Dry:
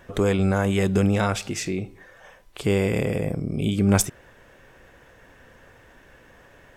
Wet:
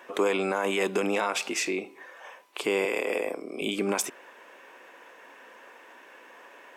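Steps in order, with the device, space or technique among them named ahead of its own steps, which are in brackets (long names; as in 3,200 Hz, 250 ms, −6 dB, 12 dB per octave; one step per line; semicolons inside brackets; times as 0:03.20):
laptop speaker (high-pass filter 290 Hz 24 dB per octave; parametric band 1,000 Hz +8 dB 0.5 octaves; parametric band 2,500 Hz +6 dB 0.53 octaves; brickwall limiter −16 dBFS, peak gain reduction 10 dB)
0:02.85–0:03.62: high-pass filter 310 Hz 12 dB per octave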